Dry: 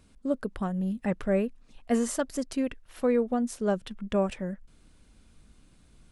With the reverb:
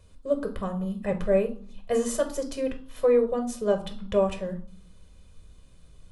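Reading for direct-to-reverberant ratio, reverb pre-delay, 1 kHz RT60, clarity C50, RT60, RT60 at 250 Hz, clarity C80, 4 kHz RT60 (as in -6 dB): 4.5 dB, 4 ms, 0.55 s, 12.0 dB, 0.50 s, 0.80 s, 16.0 dB, 0.45 s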